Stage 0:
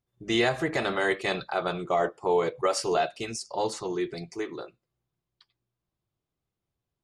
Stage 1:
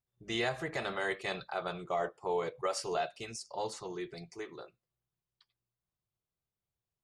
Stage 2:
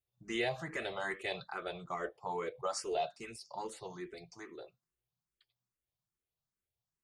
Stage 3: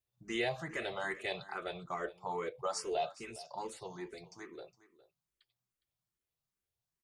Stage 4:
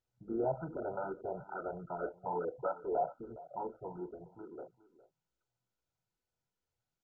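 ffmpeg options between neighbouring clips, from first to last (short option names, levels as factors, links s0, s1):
-af "equalizer=f=290:t=o:w=0.67:g=-6.5,volume=0.422"
-filter_complex "[0:a]asplit=2[s0][s1];[s1]afreqshift=2.4[s2];[s0][s2]amix=inputs=2:normalize=1"
-af "aecho=1:1:411:0.126"
-af "aemphasis=mode=reproduction:type=75fm,volume=1.12" -ar 16000 -c:a mp2 -b:a 8k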